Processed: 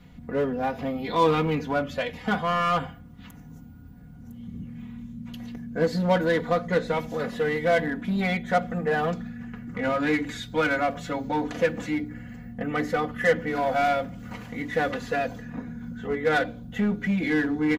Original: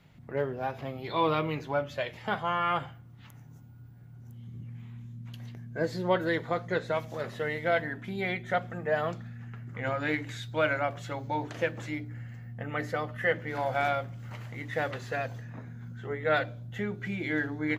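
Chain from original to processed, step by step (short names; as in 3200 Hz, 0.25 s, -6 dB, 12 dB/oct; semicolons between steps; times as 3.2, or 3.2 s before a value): low shelf 280 Hz +10 dB; comb 4.1 ms, depth 88%; in parallel at -9.5 dB: wavefolder -25.5 dBFS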